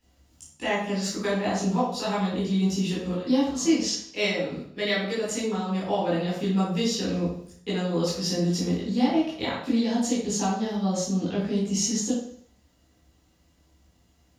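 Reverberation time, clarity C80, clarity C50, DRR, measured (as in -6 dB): 0.60 s, 6.0 dB, 2.0 dB, -7.0 dB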